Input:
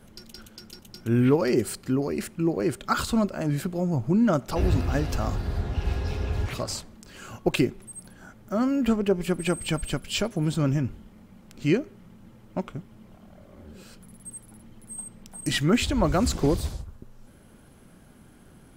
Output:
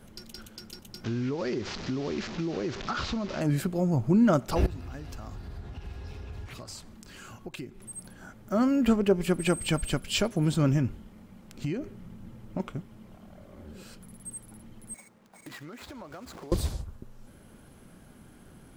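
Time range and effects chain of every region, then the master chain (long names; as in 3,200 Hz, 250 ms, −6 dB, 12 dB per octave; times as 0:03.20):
0:01.04–0:03.41: linear delta modulator 32 kbit/s, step −32 dBFS + downward compressor 16 to 1, threshold −26 dBFS
0:04.66–0:07.82: downward compressor 2.5 to 1, threshold −43 dBFS + parametric band 540 Hz −3.5 dB 0.83 octaves
0:11.64–0:12.60: low-shelf EQ 210 Hz +7 dB + downward compressor 16 to 1, threshold −26 dBFS
0:14.94–0:16.52: running median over 15 samples + high-pass filter 710 Hz 6 dB per octave + downward compressor 16 to 1, threshold −39 dBFS
whole clip: no processing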